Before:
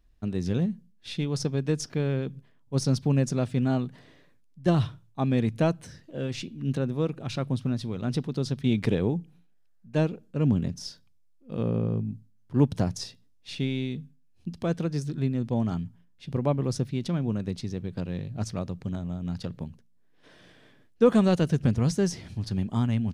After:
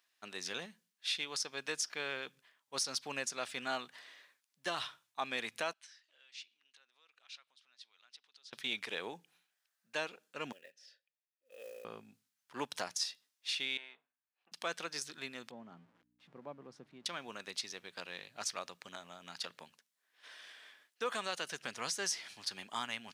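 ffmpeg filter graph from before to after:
-filter_complex "[0:a]asettb=1/sr,asplit=3[a][b][c];[a]atrim=end=5.734[d];[b]atrim=start=5.73:end=8.53,asetpts=PTS-STARTPTS,afade=t=in:d=0.004:c=qsin,afade=t=out:st=2.796:d=0.004:c=qsin,lowpass=3.6k,acompressor=threshold=-40dB:ratio=4:attack=3.2:release=140:knee=1:detection=peak,aderivative[e];[c]atrim=start=8.526[f];[d][e]acrossfade=d=0.004:c1=hsin:c2=qsin[g];[g][f]acrossfade=d=0.004:c1=qsin:c2=hsin,asettb=1/sr,asplit=3[h][i][j];[h]atrim=end=10.524[k];[i]atrim=start=10.52:end=11.85,asetpts=PTS-STARTPTS,afade=t=in:d=0.004:c=qsin,afade=t=out:st=1.326:d=0.004:c=qsin,deesser=0.85,asplit=3[l][m][n];[l]bandpass=f=530:t=q:w=8,volume=0dB[o];[m]bandpass=f=1.84k:t=q:w=8,volume=-6dB[p];[n]bandpass=f=2.48k:t=q:w=8,volume=-9dB[q];[o][p][q]amix=inputs=3:normalize=0,acrusher=bits=8:mode=log:mix=0:aa=0.000001[r];[j]atrim=start=11.846[s];[k][r]acrossfade=d=0.004:c1=hsin:c2=qsin[t];[t][s]acrossfade=d=0.004:c1=qsin:c2=hsin,asettb=1/sr,asplit=3[u][v][w];[u]atrim=end=13.774[x];[v]atrim=start=13.77:end=14.52,asetpts=PTS-STARTPTS,afade=t=in:d=0.004:c=qsin,afade=t=out:st=0.746:d=0.004:c=qsin,aeval=exprs='if(lt(val(0),0),0.708*val(0),val(0))':c=same,highpass=680,lowpass=5.5k,adynamicsmooth=sensitivity=1:basefreq=1.5k[y];[w]atrim=start=14.516[z];[x][y]acrossfade=d=0.004:c1=hsin:c2=qsin[aa];[aa][z]acrossfade=d=0.004:c1=qsin:c2=hsin,asettb=1/sr,asplit=3[ab][ac][ad];[ab]atrim=end=15.514[ae];[ac]atrim=start=15.51:end=17.06,asetpts=PTS-STARTPTS,afade=t=in:d=0.004:c=qsin,afade=t=out:st=1.546:d=0.004:c=qsin,aeval=exprs='val(0)+0.5*0.00891*sgn(val(0))':c=same,bandpass=f=180:t=q:w=1.2,aeval=exprs='val(0)+0.00501*(sin(2*PI*60*n/s)+sin(2*PI*2*60*n/s)/2+sin(2*PI*3*60*n/s)/3+sin(2*PI*4*60*n/s)/4+sin(2*PI*5*60*n/s)/5)':c=same[af];[ad]atrim=start=17.056[ag];[ae][af]acrossfade=d=0.004:c1=hsin:c2=qsin[ah];[ah][ag]acrossfade=d=0.004:c1=qsin:c2=hsin,highpass=1.3k,alimiter=level_in=5dB:limit=-24dB:level=0:latency=1:release=195,volume=-5dB,volume=5dB"

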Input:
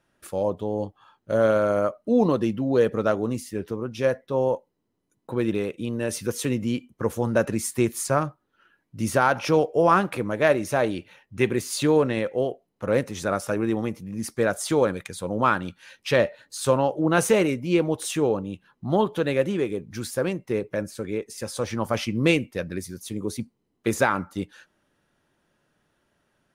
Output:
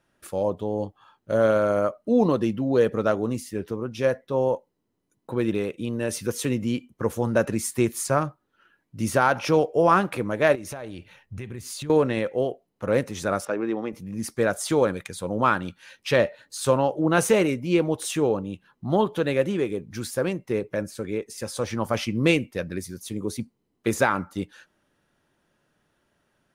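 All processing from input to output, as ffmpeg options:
-filter_complex "[0:a]asettb=1/sr,asplit=3[a][b][c];[a]atrim=end=10.554[d];[b]atrim=start=10.55:end=11.9,asetpts=PTS-STARTPTS,afade=t=in:d=0.004:c=qsin,afade=t=out:st=1.346:d=0.004:c=qsin,asubboost=boost=11:cutoff=160,acompressor=threshold=-32dB:ratio=8:attack=3.2:release=140:knee=1:detection=peak[e];[c]atrim=start=11.896[f];[d][e]acrossfade=d=0.004:c1=hsin:c2=qsin[g];[g][f]acrossfade=d=0.004:c1=qsin:c2=hsin,asettb=1/sr,asplit=3[h][i][j];[h]atrim=end=13.454[k];[i]atrim=start=13.45:end=13.93,asetpts=PTS-STARTPTS,afade=t=in:d=0.004:c=qsin,afade=t=out:st=0.476:d=0.004:c=qsin,highpass=270,adynamicsmooth=sensitivity=1:basefreq=3.4k[l];[j]atrim=start=13.926[m];[k][l]acrossfade=d=0.004:c1=hsin:c2=qsin[n];[n][m]acrossfade=d=0.004:c1=qsin:c2=hsin"

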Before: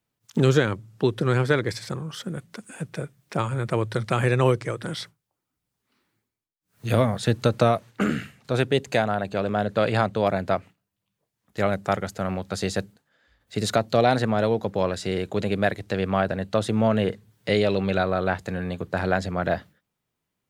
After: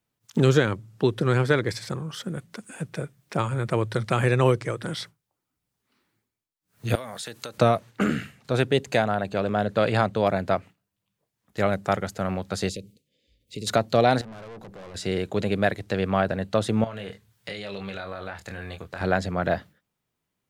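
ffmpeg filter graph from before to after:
-filter_complex "[0:a]asettb=1/sr,asplit=3[a][b][c];[a]atrim=end=6.954[d];[b]atrim=start=6.95:end=7.58,asetpts=PTS-STARTPTS,afade=t=in:d=0.004:c=qsin,afade=t=out:st=0.626:d=0.004:c=qsin,highpass=f=750:p=1,highshelf=f=6.2k:g=9,acompressor=threshold=-31dB:ratio=10:attack=3.2:release=140:knee=1:detection=peak[e];[c]atrim=start=7.576[f];[d][e]acrossfade=d=0.004:c1=hsin:c2=qsin[g];[g][f]acrossfade=d=0.004:c1=qsin:c2=hsin,asettb=1/sr,asplit=3[h][i][j];[h]atrim=end=12.694[k];[i]atrim=start=12.69:end=13.67,asetpts=PTS-STARTPTS,afade=t=in:d=0.004:c=qsin,afade=t=out:st=0.976:d=0.004:c=qsin,acompressor=threshold=-31dB:ratio=3:attack=3.2:release=140:knee=1:detection=peak,asuperstop=centerf=1100:order=12:qfactor=0.66[l];[j]atrim=start=13.666[m];[k][l]acrossfade=d=0.004:c1=hsin:c2=qsin[n];[n][m]acrossfade=d=0.004:c1=qsin:c2=hsin,asettb=1/sr,asplit=3[o][p][q];[o]atrim=end=14.214[r];[p]atrim=start=14.21:end=14.95,asetpts=PTS-STARTPTS,afade=t=in:d=0.004:c=qsin,afade=t=out:st=0.736:d=0.004:c=qsin,equalizer=f=3.3k:t=o:w=2.6:g=-4,acompressor=threshold=-29dB:ratio=2:attack=3.2:release=140:knee=1:detection=peak,aeval=exprs='(tanh(89.1*val(0)+0.35)-tanh(0.35))/89.1':c=same[s];[q]atrim=start=14.946[t];[r][s]acrossfade=d=0.004:c1=hsin:c2=qsin[u];[u][t]acrossfade=d=0.004:c1=qsin:c2=hsin,asettb=1/sr,asplit=3[v][w][x];[v]atrim=end=16.844[y];[w]atrim=start=16.84:end=19.01,asetpts=PTS-STARTPTS,afade=t=in:d=0.004:c=qsin,afade=t=out:st=2.166:d=0.004:c=qsin,equalizer=f=280:w=0.44:g=-10,acompressor=threshold=-30dB:ratio=12:attack=3.2:release=140:knee=1:detection=peak,asplit=2[z][aa];[aa]adelay=25,volume=-6dB[ab];[z][ab]amix=inputs=2:normalize=0,atrim=end_sample=95697[ac];[x]atrim=start=19.006[ad];[y][ac]acrossfade=d=0.004:c1=hsin:c2=qsin[ae];[ae][ad]acrossfade=d=0.004:c1=qsin:c2=hsin"

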